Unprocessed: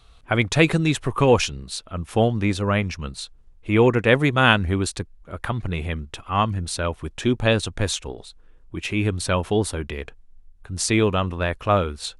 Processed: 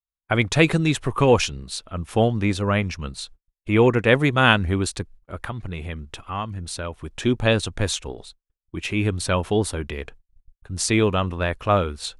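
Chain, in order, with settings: gate -42 dBFS, range -48 dB; 5.42–7.13 compressor 2:1, threshold -31 dBFS, peak gain reduction 9 dB

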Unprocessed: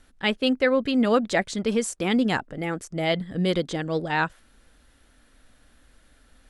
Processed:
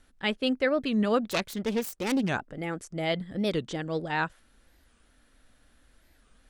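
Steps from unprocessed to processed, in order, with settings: 1.31–2.3 self-modulated delay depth 0.27 ms; record warp 45 rpm, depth 250 cents; gain -4.5 dB

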